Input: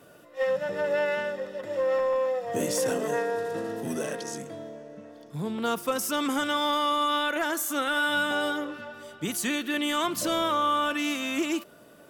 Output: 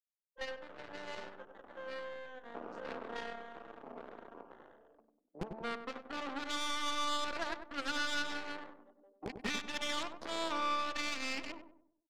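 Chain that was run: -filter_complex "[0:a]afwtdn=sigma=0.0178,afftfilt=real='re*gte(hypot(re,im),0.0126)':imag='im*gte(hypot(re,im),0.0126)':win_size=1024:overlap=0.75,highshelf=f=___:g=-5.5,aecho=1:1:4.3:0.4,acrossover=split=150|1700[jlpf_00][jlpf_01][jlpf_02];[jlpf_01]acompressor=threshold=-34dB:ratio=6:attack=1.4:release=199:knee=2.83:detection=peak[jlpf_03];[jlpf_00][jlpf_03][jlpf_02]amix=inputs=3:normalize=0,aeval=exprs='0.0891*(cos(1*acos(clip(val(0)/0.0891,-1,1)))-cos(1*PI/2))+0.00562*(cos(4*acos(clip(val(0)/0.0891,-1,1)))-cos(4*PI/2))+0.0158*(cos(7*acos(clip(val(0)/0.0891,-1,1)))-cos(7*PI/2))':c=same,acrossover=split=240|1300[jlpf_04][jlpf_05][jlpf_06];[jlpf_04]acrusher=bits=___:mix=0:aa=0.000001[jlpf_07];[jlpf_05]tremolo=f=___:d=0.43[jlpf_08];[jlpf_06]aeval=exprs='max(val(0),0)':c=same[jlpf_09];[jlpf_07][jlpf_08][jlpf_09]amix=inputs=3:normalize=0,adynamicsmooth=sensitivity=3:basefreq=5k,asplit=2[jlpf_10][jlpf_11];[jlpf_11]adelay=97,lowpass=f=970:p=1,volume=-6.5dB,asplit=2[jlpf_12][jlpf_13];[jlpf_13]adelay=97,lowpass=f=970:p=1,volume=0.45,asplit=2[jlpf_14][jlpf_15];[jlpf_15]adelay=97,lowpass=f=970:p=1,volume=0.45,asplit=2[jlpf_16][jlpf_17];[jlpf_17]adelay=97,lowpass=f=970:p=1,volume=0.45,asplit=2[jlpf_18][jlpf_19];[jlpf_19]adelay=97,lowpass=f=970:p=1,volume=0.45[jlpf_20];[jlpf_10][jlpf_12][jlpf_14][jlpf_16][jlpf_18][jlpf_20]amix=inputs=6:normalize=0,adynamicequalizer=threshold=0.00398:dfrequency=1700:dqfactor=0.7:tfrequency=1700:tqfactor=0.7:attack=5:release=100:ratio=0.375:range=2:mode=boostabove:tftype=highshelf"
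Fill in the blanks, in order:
2.4k, 5, 0.67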